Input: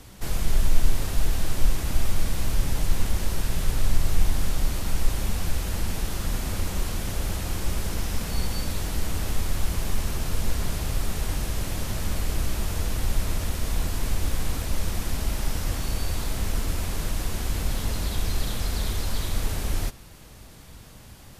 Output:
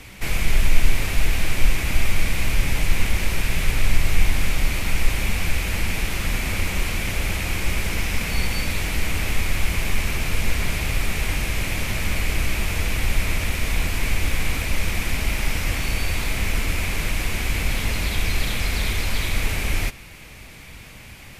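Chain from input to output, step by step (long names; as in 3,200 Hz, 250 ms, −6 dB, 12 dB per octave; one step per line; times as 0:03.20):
parametric band 2,300 Hz +14.5 dB 0.66 octaves
level +3 dB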